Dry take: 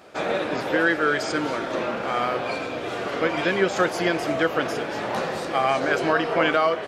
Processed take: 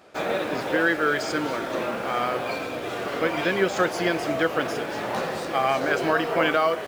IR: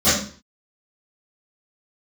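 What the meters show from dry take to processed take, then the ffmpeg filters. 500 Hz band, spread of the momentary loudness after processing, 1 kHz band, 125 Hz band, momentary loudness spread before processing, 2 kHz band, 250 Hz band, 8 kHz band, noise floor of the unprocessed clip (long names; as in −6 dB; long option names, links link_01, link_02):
−1.0 dB, 7 LU, −1.0 dB, −1.0 dB, 7 LU, −1.0 dB, −1.0 dB, 0.0 dB, −31 dBFS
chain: -filter_complex "[0:a]asplit=2[link_01][link_02];[link_02]acrusher=bits=5:mix=0:aa=0.000001,volume=-8dB[link_03];[link_01][link_03]amix=inputs=2:normalize=0,volume=-4dB"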